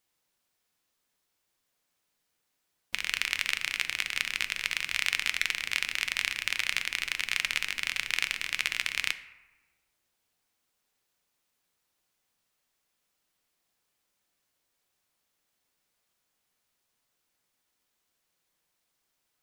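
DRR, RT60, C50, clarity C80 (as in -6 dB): 10.0 dB, 1.1 s, 14.0 dB, 16.0 dB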